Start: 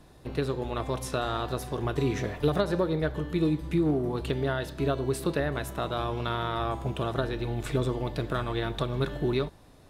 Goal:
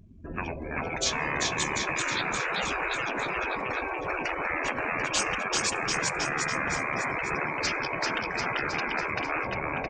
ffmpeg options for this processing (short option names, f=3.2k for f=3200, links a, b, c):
-filter_complex "[0:a]asoftclip=type=tanh:threshold=-14.5dB,bandreject=f=730:w=12,afftdn=nr=28:nf=-49,asetrate=27781,aresample=44100,atempo=1.5874,dynaudnorm=f=120:g=17:m=10.5dB,asplit=2[a][b];[b]aecho=0:1:390|741|1057|1341|1597:0.631|0.398|0.251|0.158|0.1[c];[a][c]amix=inputs=2:normalize=0,afftfilt=real='re*lt(hypot(re,im),0.2)':imag='im*lt(hypot(re,im),0.2)':win_size=1024:overlap=0.75,highpass=f=69:p=1,afftfilt=real='re*lt(hypot(re,im),0.0708)':imag='im*lt(hypot(re,im),0.0708)':win_size=1024:overlap=0.75,volume=8dB"